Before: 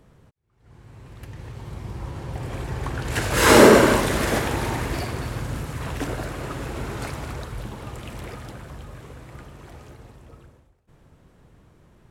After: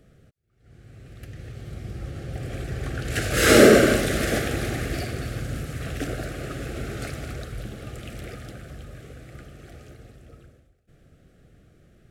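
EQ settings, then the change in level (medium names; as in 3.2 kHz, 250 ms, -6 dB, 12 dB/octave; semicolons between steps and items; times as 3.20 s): Butterworth band-stop 960 Hz, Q 1.9; -1.0 dB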